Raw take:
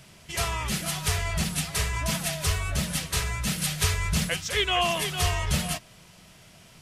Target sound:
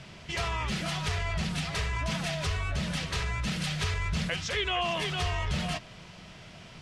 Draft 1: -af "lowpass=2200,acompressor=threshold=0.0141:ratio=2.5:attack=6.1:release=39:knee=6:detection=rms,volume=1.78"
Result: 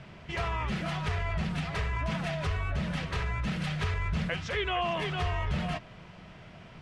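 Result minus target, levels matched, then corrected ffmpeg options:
4 kHz band -5.0 dB
-af "lowpass=4500,acompressor=threshold=0.0141:ratio=2.5:attack=6.1:release=39:knee=6:detection=rms,volume=1.78"

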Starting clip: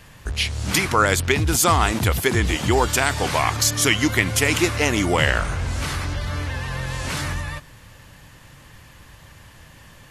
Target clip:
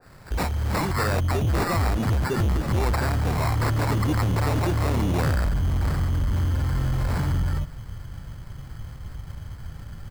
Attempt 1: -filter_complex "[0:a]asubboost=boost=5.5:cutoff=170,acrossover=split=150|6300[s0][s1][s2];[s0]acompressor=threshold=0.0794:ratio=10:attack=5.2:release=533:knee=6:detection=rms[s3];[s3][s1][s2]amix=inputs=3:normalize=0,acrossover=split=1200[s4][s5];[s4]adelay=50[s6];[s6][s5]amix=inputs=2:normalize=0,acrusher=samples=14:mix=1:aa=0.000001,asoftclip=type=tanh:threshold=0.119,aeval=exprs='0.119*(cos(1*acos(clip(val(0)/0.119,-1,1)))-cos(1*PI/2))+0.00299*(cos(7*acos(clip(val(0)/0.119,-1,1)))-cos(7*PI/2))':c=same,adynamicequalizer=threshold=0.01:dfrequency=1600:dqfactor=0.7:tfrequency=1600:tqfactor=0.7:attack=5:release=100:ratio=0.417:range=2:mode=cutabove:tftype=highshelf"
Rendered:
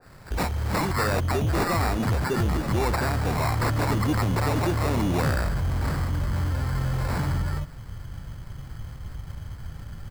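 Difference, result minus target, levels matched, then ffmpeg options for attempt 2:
compression: peak gain reduction +6.5 dB
-filter_complex "[0:a]asubboost=boost=5.5:cutoff=170,acrossover=split=150|6300[s0][s1][s2];[s0]acompressor=threshold=0.188:ratio=10:attack=5.2:release=533:knee=6:detection=rms[s3];[s3][s1][s2]amix=inputs=3:normalize=0,acrossover=split=1200[s4][s5];[s4]adelay=50[s6];[s6][s5]amix=inputs=2:normalize=0,acrusher=samples=14:mix=1:aa=0.000001,asoftclip=type=tanh:threshold=0.119,aeval=exprs='0.119*(cos(1*acos(clip(val(0)/0.119,-1,1)))-cos(1*PI/2))+0.00299*(cos(7*acos(clip(val(0)/0.119,-1,1)))-cos(7*PI/2))':c=same,adynamicequalizer=threshold=0.01:dfrequency=1600:dqfactor=0.7:tfrequency=1600:tqfactor=0.7:attack=5:release=100:ratio=0.417:range=2:mode=cutabove:tftype=highshelf"

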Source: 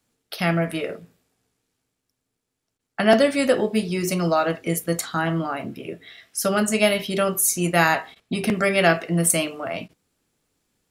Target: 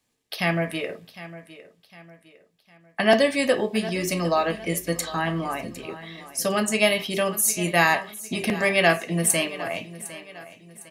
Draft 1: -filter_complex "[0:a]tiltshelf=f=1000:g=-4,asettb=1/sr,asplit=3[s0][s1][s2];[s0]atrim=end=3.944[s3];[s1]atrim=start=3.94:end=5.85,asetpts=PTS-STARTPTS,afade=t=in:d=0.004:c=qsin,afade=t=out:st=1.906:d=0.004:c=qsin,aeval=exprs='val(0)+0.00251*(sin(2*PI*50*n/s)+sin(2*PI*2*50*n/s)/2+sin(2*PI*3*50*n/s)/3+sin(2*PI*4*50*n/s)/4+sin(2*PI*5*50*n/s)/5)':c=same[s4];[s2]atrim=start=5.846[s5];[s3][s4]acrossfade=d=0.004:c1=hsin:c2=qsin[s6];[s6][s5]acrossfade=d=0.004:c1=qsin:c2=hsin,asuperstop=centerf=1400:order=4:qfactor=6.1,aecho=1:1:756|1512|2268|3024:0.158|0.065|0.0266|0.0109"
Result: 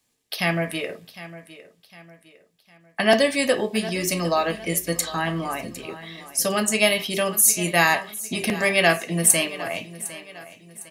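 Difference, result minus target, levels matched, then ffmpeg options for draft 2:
8 kHz band +3.5 dB
-filter_complex "[0:a]tiltshelf=f=1000:g=-4,asettb=1/sr,asplit=3[s0][s1][s2];[s0]atrim=end=3.944[s3];[s1]atrim=start=3.94:end=5.85,asetpts=PTS-STARTPTS,afade=t=in:d=0.004:c=qsin,afade=t=out:st=1.906:d=0.004:c=qsin,aeval=exprs='val(0)+0.00251*(sin(2*PI*50*n/s)+sin(2*PI*2*50*n/s)/2+sin(2*PI*3*50*n/s)/3+sin(2*PI*4*50*n/s)/4+sin(2*PI*5*50*n/s)/5)':c=same[s4];[s2]atrim=start=5.846[s5];[s3][s4]acrossfade=d=0.004:c1=hsin:c2=qsin[s6];[s6][s5]acrossfade=d=0.004:c1=qsin:c2=hsin,asuperstop=centerf=1400:order=4:qfactor=6.1,highshelf=f=3900:g=-6,aecho=1:1:756|1512|2268|3024:0.158|0.065|0.0266|0.0109"

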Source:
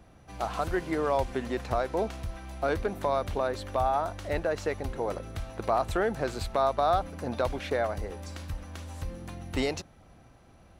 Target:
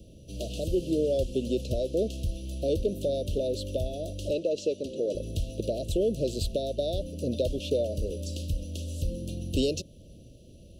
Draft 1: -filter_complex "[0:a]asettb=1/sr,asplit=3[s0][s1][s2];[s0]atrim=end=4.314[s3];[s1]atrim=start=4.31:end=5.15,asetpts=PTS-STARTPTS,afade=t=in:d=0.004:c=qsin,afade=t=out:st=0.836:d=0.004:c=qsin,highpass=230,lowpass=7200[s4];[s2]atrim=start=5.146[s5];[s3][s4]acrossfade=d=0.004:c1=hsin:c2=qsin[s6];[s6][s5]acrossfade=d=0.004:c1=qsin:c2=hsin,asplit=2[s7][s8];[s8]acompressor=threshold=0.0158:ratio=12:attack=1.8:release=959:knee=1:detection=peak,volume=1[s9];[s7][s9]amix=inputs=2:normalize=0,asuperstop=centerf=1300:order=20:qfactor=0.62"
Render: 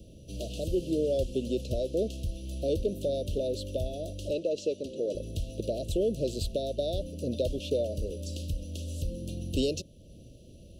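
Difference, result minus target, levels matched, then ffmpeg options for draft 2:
compression: peak gain reduction +8 dB
-filter_complex "[0:a]asettb=1/sr,asplit=3[s0][s1][s2];[s0]atrim=end=4.314[s3];[s1]atrim=start=4.31:end=5.15,asetpts=PTS-STARTPTS,afade=t=in:d=0.004:c=qsin,afade=t=out:st=0.836:d=0.004:c=qsin,highpass=230,lowpass=7200[s4];[s2]atrim=start=5.146[s5];[s3][s4]acrossfade=d=0.004:c1=hsin:c2=qsin[s6];[s6][s5]acrossfade=d=0.004:c1=qsin:c2=hsin,asplit=2[s7][s8];[s8]acompressor=threshold=0.0422:ratio=12:attack=1.8:release=959:knee=1:detection=peak,volume=1[s9];[s7][s9]amix=inputs=2:normalize=0,asuperstop=centerf=1300:order=20:qfactor=0.62"

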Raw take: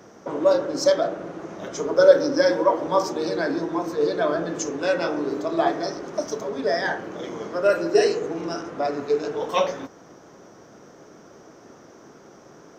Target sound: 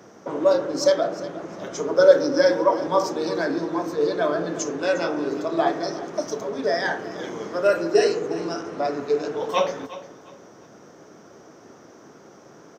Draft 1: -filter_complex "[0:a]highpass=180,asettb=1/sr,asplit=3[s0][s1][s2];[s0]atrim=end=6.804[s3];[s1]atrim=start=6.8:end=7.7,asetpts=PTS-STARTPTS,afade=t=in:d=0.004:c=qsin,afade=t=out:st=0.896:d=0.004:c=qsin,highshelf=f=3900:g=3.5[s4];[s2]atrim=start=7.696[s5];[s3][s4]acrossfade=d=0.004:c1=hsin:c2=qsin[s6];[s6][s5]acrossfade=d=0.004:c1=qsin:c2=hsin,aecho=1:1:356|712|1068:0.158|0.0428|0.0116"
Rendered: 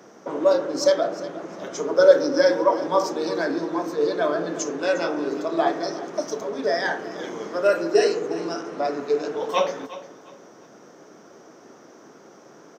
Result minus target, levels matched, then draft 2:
125 Hz band -3.5 dB
-filter_complex "[0:a]highpass=72,asettb=1/sr,asplit=3[s0][s1][s2];[s0]atrim=end=6.804[s3];[s1]atrim=start=6.8:end=7.7,asetpts=PTS-STARTPTS,afade=t=in:d=0.004:c=qsin,afade=t=out:st=0.896:d=0.004:c=qsin,highshelf=f=3900:g=3.5[s4];[s2]atrim=start=7.696[s5];[s3][s4]acrossfade=d=0.004:c1=hsin:c2=qsin[s6];[s6][s5]acrossfade=d=0.004:c1=qsin:c2=hsin,aecho=1:1:356|712|1068:0.158|0.0428|0.0116"

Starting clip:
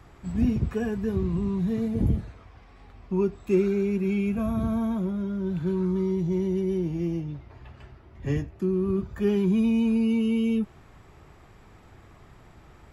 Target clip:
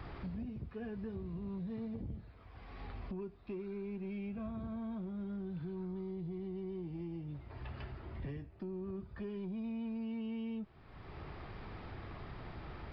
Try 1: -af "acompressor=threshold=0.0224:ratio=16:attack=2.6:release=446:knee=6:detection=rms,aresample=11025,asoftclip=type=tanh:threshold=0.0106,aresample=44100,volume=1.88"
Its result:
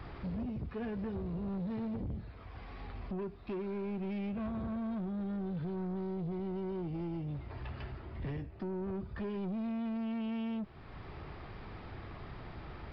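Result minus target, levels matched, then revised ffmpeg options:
compression: peak gain reduction -7.5 dB
-af "acompressor=threshold=0.00891:ratio=16:attack=2.6:release=446:knee=6:detection=rms,aresample=11025,asoftclip=type=tanh:threshold=0.0106,aresample=44100,volume=1.88"

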